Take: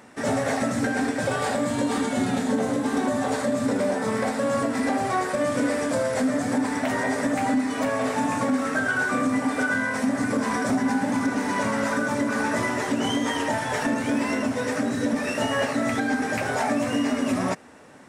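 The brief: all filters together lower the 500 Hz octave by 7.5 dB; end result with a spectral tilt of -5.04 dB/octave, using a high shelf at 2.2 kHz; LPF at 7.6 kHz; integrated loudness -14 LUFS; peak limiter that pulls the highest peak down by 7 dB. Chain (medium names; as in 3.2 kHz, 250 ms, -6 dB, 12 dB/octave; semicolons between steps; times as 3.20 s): low-pass 7.6 kHz; peaking EQ 500 Hz -9 dB; treble shelf 2.2 kHz -3.5 dB; trim +16.5 dB; peak limiter -6 dBFS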